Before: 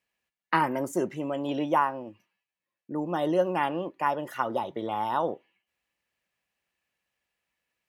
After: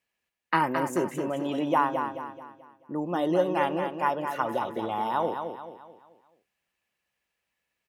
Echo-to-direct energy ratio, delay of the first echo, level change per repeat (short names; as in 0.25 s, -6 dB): -6.0 dB, 0.217 s, -7.5 dB